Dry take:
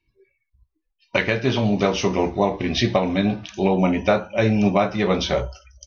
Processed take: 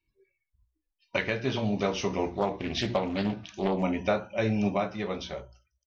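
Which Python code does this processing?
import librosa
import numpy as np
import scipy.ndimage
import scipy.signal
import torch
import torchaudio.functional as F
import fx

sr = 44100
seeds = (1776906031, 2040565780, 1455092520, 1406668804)

y = fx.fade_out_tail(x, sr, length_s=1.26)
y = fx.hum_notches(y, sr, base_hz=60, count=6)
y = fx.doppler_dist(y, sr, depth_ms=0.37, at=(2.33, 3.83))
y = y * 10.0 ** (-8.0 / 20.0)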